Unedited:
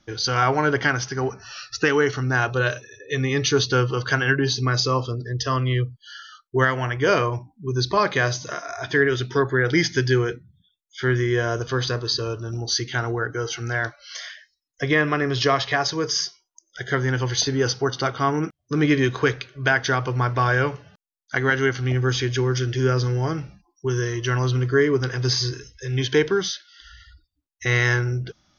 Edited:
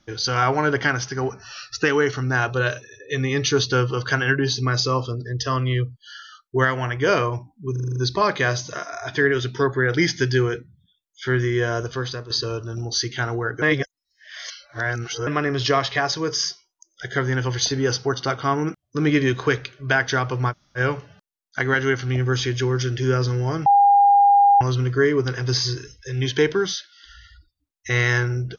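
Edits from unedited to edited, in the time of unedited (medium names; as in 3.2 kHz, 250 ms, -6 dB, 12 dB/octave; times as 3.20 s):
7.72 s: stutter 0.04 s, 7 plays
11.53–12.06 s: fade out, to -10 dB
13.38–15.03 s: reverse
20.27–20.54 s: room tone, crossfade 0.06 s
23.42–24.37 s: bleep 807 Hz -10.5 dBFS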